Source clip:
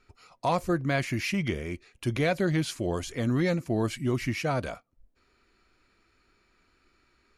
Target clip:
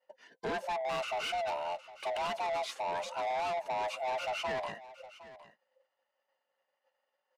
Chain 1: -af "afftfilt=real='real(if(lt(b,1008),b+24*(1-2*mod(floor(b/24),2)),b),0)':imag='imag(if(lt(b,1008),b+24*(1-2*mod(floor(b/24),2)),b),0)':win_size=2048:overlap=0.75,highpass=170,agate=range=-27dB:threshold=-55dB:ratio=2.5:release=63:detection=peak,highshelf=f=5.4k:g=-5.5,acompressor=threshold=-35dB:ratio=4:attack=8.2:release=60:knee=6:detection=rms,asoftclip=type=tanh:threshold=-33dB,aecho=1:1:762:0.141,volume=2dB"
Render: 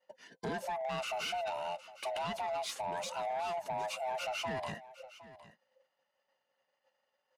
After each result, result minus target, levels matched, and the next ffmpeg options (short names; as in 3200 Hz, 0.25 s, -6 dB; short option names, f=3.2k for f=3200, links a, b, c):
compressor: peak gain reduction +8 dB; 125 Hz band +7.5 dB; 8000 Hz band +5.5 dB
-af "afftfilt=real='real(if(lt(b,1008),b+24*(1-2*mod(floor(b/24),2)),b),0)':imag='imag(if(lt(b,1008),b+24*(1-2*mod(floor(b/24),2)),b),0)':win_size=2048:overlap=0.75,highpass=170,agate=range=-27dB:threshold=-55dB:ratio=2.5:release=63:detection=peak,highshelf=f=5.4k:g=-5.5,acompressor=threshold=-24dB:ratio=4:attack=8.2:release=60:knee=6:detection=rms,asoftclip=type=tanh:threshold=-33dB,aecho=1:1:762:0.141,volume=2dB"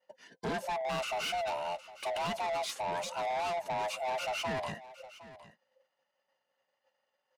125 Hz band +7.5 dB; 8000 Hz band +5.0 dB
-af "afftfilt=real='real(if(lt(b,1008),b+24*(1-2*mod(floor(b/24),2)),b),0)':imag='imag(if(lt(b,1008),b+24*(1-2*mod(floor(b/24),2)),b),0)':win_size=2048:overlap=0.75,highpass=350,agate=range=-27dB:threshold=-55dB:ratio=2.5:release=63:detection=peak,highshelf=f=5.4k:g=-5.5,acompressor=threshold=-24dB:ratio=4:attack=8.2:release=60:knee=6:detection=rms,asoftclip=type=tanh:threshold=-33dB,aecho=1:1:762:0.141,volume=2dB"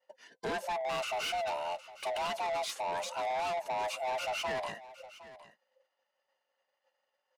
8000 Hz band +5.0 dB
-af "afftfilt=real='real(if(lt(b,1008),b+24*(1-2*mod(floor(b/24),2)),b),0)':imag='imag(if(lt(b,1008),b+24*(1-2*mod(floor(b/24),2)),b),0)':win_size=2048:overlap=0.75,highpass=350,agate=range=-27dB:threshold=-55dB:ratio=2.5:release=63:detection=peak,highshelf=f=5.4k:g=-17,acompressor=threshold=-24dB:ratio=4:attack=8.2:release=60:knee=6:detection=rms,asoftclip=type=tanh:threshold=-33dB,aecho=1:1:762:0.141,volume=2dB"